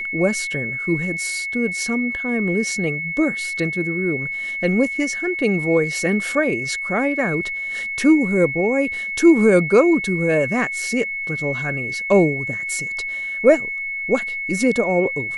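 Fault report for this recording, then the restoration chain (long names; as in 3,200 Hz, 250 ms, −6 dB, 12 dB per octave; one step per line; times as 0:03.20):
whistle 2,200 Hz −24 dBFS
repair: notch filter 2,200 Hz, Q 30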